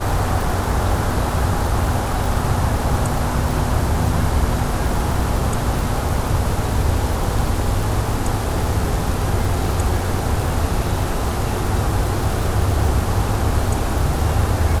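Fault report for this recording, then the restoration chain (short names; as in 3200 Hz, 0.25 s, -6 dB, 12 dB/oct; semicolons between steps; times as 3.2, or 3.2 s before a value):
crackle 60/s -23 dBFS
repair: de-click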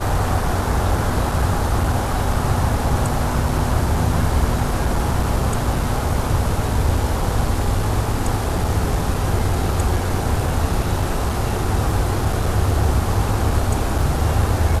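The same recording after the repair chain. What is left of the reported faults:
none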